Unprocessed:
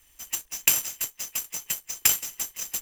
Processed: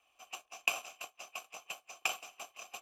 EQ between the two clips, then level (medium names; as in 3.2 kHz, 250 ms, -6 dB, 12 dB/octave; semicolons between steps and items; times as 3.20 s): vowel filter a; +8.0 dB